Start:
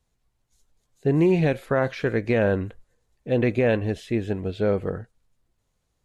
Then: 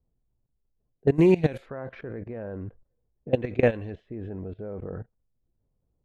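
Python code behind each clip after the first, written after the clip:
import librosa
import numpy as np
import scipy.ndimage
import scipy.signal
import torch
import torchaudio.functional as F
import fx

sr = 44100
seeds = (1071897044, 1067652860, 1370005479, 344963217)

y = fx.level_steps(x, sr, step_db=19)
y = fx.env_lowpass(y, sr, base_hz=490.0, full_db=-23.0)
y = y * librosa.db_to_amplitude(3.0)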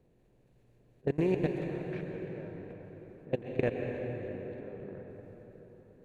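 y = fx.bin_compress(x, sr, power=0.6)
y = fx.level_steps(y, sr, step_db=20)
y = fx.rev_plate(y, sr, seeds[0], rt60_s=4.5, hf_ratio=0.65, predelay_ms=110, drr_db=2.5)
y = y * librosa.db_to_amplitude(-7.0)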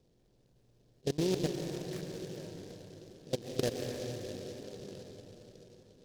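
y = fx.noise_mod_delay(x, sr, seeds[1], noise_hz=4200.0, depth_ms=0.091)
y = y * librosa.db_to_amplitude(-2.5)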